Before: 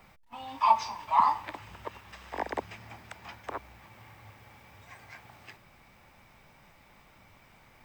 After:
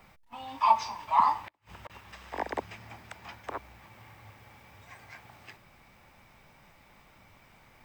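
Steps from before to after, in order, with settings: 1.36–1.90 s: inverted gate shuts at -29 dBFS, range -34 dB

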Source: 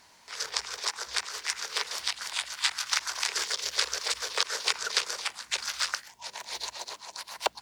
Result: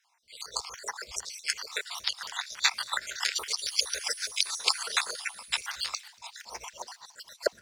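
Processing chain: random holes in the spectrogram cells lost 57%; peaking EQ 310 Hz -5.5 dB 0.28 oct; in parallel at 0 dB: compression, threshold -41 dBFS, peak gain reduction 17 dB; 3.57–5.60 s: on the sum: whistle 9.9 kHz -42 dBFS; on a send: feedback echo behind a high-pass 235 ms, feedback 80%, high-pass 2.6 kHz, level -21 dB; on the sum: three bands expanded up and down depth 70%

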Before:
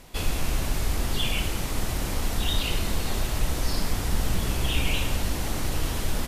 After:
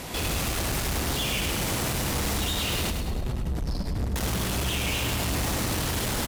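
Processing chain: 2.90–4.16 s: spectral contrast enhancement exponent 1.8; high-pass 66 Hz 12 dB/octave; in parallel at +1.5 dB: gain riding within 4 dB; on the sum: peak limiter -16.5 dBFS, peak gain reduction 6.5 dB; saturation -34 dBFS, distortion -6 dB; on a send: feedback delay 103 ms, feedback 47%, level -6.5 dB; on the sum: trim +7 dB

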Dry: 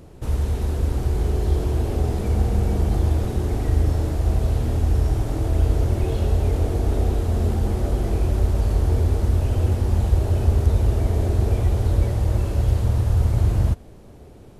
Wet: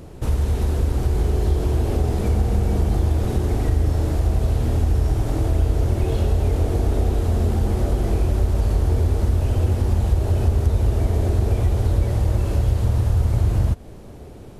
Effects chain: compression 2:1, threshold -23 dBFS, peak gain reduction 7 dB; trim +5 dB

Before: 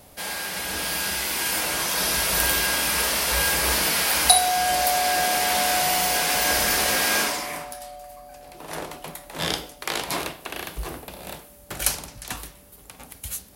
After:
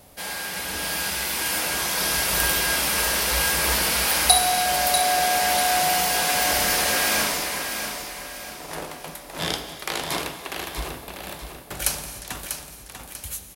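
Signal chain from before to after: feedback delay 643 ms, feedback 40%, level -7.5 dB; gated-style reverb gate 330 ms flat, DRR 10 dB; trim -1 dB

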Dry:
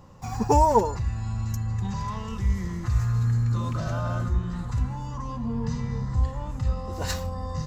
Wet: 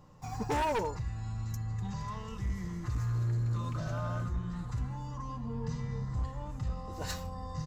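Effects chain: comb 6.6 ms, depth 32%; hard clipper -20 dBFS, distortion -10 dB; trim -7.5 dB

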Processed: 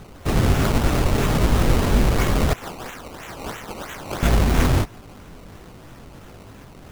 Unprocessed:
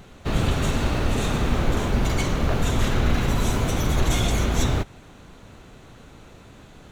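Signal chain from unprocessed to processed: chorus 1.4 Hz, delay 17.5 ms, depth 6.5 ms; 2.53–4.23 s: pre-emphasis filter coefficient 0.97; decimation with a swept rate 18×, swing 100% 3 Hz; trim +7 dB

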